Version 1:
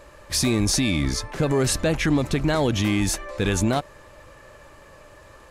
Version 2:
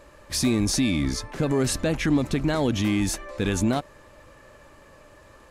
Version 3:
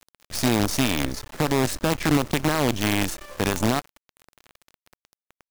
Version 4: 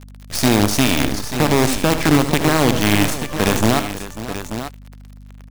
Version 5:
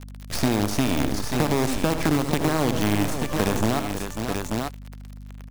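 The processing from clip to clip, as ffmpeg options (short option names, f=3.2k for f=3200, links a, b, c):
-af "equalizer=f=250:t=o:w=0.7:g=5,volume=-3.5dB"
-af "acrusher=bits=4:dc=4:mix=0:aa=0.000001"
-af "aecho=1:1:77|134|544|886:0.299|0.112|0.2|0.299,aeval=exprs='val(0)+0.00631*(sin(2*PI*50*n/s)+sin(2*PI*2*50*n/s)/2+sin(2*PI*3*50*n/s)/3+sin(2*PI*4*50*n/s)/4+sin(2*PI*5*50*n/s)/5)':c=same,volume=6dB"
-filter_complex "[0:a]acrossover=split=1400|3600[a][b][c];[a]acompressor=threshold=-19dB:ratio=4[d];[b]acompressor=threshold=-37dB:ratio=4[e];[c]acompressor=threshold=-33dB:ratio=4[f];[d][e][f]amix=inputs=3:normalize=0"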